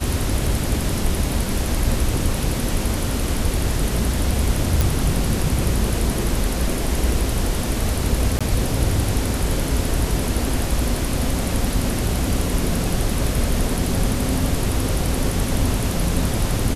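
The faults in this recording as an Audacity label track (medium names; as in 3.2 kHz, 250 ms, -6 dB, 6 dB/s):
4.810000	4.810000	pop
8.390000	8.410000	dropout 16 ms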